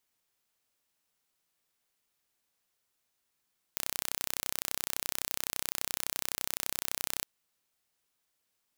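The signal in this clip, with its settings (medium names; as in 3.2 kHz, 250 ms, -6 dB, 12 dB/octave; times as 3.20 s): pulse train 31.8 per s, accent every 0, -5 dBFS 3.46 s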